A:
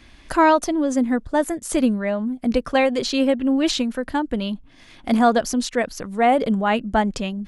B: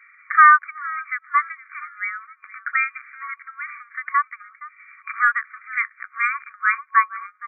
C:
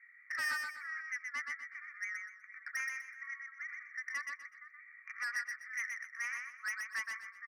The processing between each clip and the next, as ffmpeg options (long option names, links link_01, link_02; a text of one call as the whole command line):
ffmpeg -i in.wav -filter_complex "[0:a]asplit=4[link_01][link_02][link_03][link_04];[link_02]adelay=467,afreqshift=67,volume=-19dB[link_05];[link_03]adelay=934,afreqshift=134,volume=-27.2dB[link_06];[link_04]adelay=1401,afreqshift=201,volume=-35.4dB[link_07];[link_01][link_05][link_06][link_07]amix=inputs=4:normalize=0,afreqshift=260,afftfilt=real='re*between(b*sr/4096,1100,2400)':imag='im*between(b*sr/4096,1100,2400)':win_size=4096:overlap=0.75,volume=7dB" out.wav
ffmpeg -i in.wav -filter_complex "[0:a]bandpass=frequency=1900:width_type=q:width=11:csg=0,asoftclip=type=tanh:threshold=-30dB,asplit=2[link_01][link_02];[link_02]aecho=0:1:124|248|372|496:0.631|0.183|0.0531|0.0154[link_03];[link_01][link_03]amix=inputs=2:normalize=0,volume=-4dB" out.wav